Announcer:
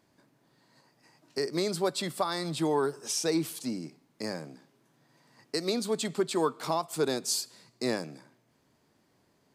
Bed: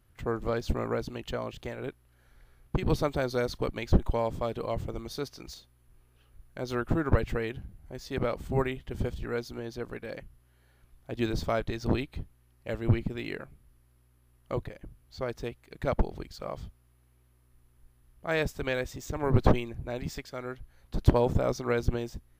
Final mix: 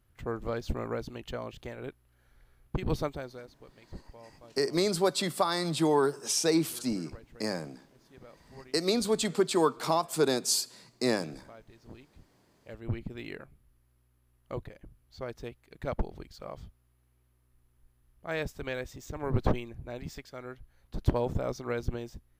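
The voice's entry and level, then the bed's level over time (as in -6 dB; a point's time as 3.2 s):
3.20 s, +2.5 dB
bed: 3.04 s -3.5 dB
3.54 s -22.5 dB
11.91 s -22.5 dB
13.21 s -5 dB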